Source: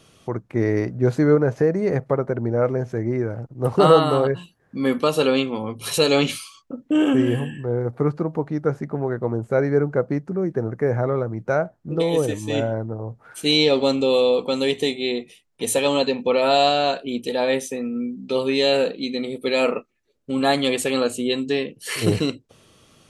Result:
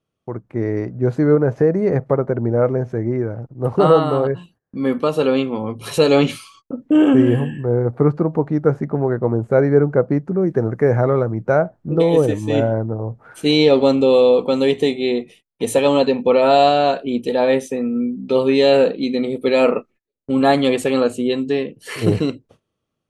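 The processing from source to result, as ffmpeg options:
-filter_complex "[0:a]asettb=1/sr,asplit=3[a][b][c];[a]atrim=end=10.474[d];[b]atrim=start=10.47:end=11.32,asetpts=PTS-STARTPTS,afade=t=in:d=0.004:c=qsin,afade=t=out:st=0.846:d=0.004:c=qsin,highshelf=f=2.2k:g=8.5[e];[c]atrim=start=11.316[f];[d][e]acrossfade=d=0.004:c1=hsin:c2=qsin[g];[g][f]acrossfade=d=0.004:c1=qsin:c2=hsin,agate=range=-22dB:threshold=-49dB:ratio=16:detection=peak,highshelf=f=2.3k:g=-11,dynaudnorm=f=860:g=3:m=11.5dB,volume=-1dB"

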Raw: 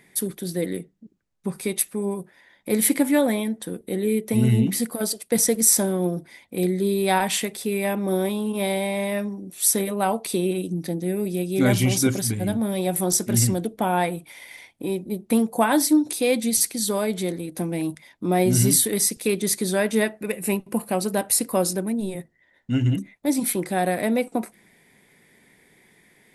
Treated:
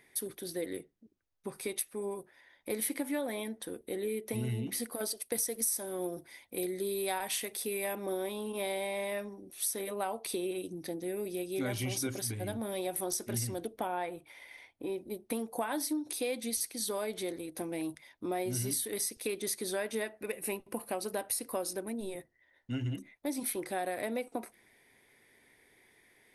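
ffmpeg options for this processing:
-filter_complex "[0:a]asettb=1/sr,asplit=3[a][b][c];[a]atrim=end=5.174[d];[b]atrim=start=5.17:end=8.06,asetpts=PTS-STARTPTS,afade=t=in:d=0.004:c=qsin,afade=t=out:st=2.886:d=0.004:c=qsin,highshelf=f=7.6k:g=9[e];[c]atrim=start=8.056[f];[d][e]acrossfade=d=0.004:c1=hsin:c2=qsin[g];[g][f]acrossfade=d=0.004:c1=qsin:c2=hsin,asettb=1/sr,asplit=3[h][i][j];[h]atrim=end=13.874[k];[i]atrim=start=13.87:end=14.98,asetpts=PTS-STARTPTS,afade=t=in:d=0.004:c=qsin,afade=t=out:st=1.106:d=0.004:c=qsin,highshelf=f=3.9k:g=-9.5[l];[j]atrim=start=14.976[m];[k][l]acrossfade=d=0.004:c1=hsin:c2=qsin[n];[n][m]acrossfade=d=0.004:c1=qsin:c2=hsin,equalizer=f=180:w=2.3:g=-14,bandreject=f=7.4k:w=5.5,acompressor=threshold=-25dB:ratio=4,volume=-6.5dB"

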